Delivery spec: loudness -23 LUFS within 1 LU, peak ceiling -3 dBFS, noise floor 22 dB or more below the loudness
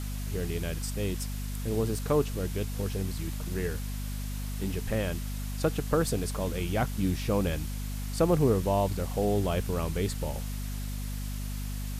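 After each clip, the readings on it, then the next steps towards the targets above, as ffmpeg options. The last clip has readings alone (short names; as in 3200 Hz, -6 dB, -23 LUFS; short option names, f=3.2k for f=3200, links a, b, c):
hum 50 Hz; harmonics up to 250 Hz; hum level -32 dBFS; noise floor -34 dBFS; noise floor target -53 dBFS; loudness -31.0 LUFS; peak -11.5 dBFS; loudness target -23.0 LUFS
-> -af "bandreject=f=50:t=h:w=4,bandreject=f=100:t=h:w=4,bandreject=f=150:t=h:w=4,bandreject=f=200:t=h:w=4,bandreject=f=250:t=h:w=4"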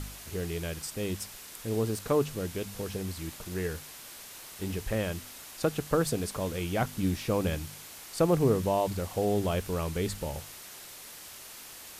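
hum none; noise floor -47 dBFS; noise floor target -54 dBFS
-> -af "afftdn=nr=7:nf=-47"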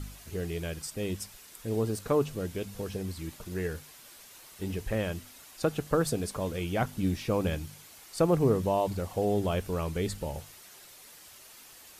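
noise floor -52 dBFS; noise floor target -54 dBFS
-> -af "afftdn=nr=6:nf=-52"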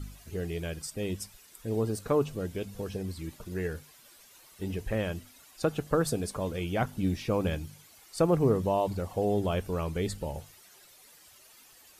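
noise floor -57 dBFS; loudness -31.5 LUFS; peak -12.0 dBFS; loudness target -23.0 LUFS
-> -af "volume=8.5dB"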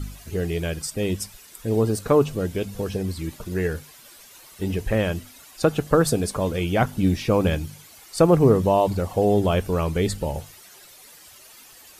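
loudness -23.0 LUFS; peak -3.5 dBFS; noise floor -48 dBFS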